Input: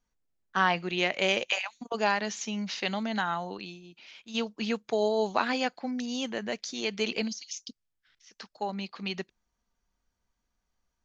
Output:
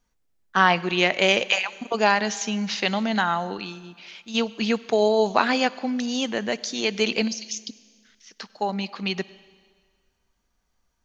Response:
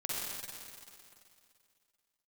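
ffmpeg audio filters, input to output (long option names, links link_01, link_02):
-filter_complex "[0:a]asplit=2[link_01][link_02];[1:a]atrim=start_sample=2205,asetrate=66150,aresample=44100,adelay=61[link_03];[link_02][link_03]afir=irnorm=-1:irlink=0,volume=-19.5dB[link_04];[link_01][link_04]amix=inputs=2:normalize=0,volume=7dB"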